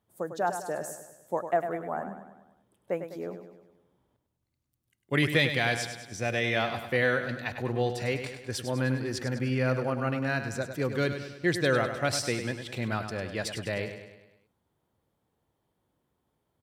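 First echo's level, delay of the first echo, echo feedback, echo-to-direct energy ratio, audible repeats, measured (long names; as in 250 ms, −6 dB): −9.0 dB, 101 ms, 53%, −7.5 dB, 5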